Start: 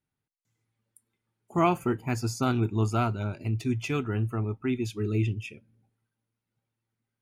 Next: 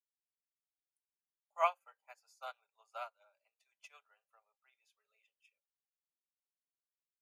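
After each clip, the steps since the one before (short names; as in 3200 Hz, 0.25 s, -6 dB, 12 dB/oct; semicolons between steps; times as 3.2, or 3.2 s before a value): steep high-pass 510 Hz 96 dB/oct; comb 5 ms, depth 33%; upward expander 2.5:1, over -41 dBFS; gain -4 dB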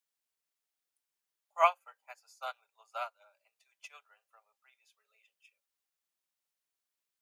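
low shelf 310 Hz -9 dB; gain +7 dB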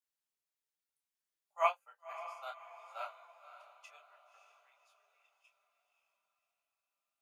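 diffused feedback echo 0.566 s, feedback 44%, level -11 dB; detuned doubles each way 23 cents; gain -2 dB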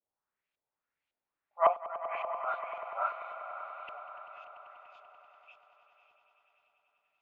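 dispersion highs, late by 86 ms, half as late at 2900 Hz; LFO low-pass saw up 1.8 Hz 570–3100 Hz; swelling echo 97 ms, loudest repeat 5, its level -15.5 dB; gain +5 dB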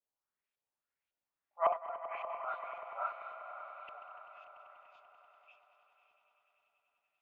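regenerating reverse delay 0.113 s, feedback 45%, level -11 dB; gain -5.5 dB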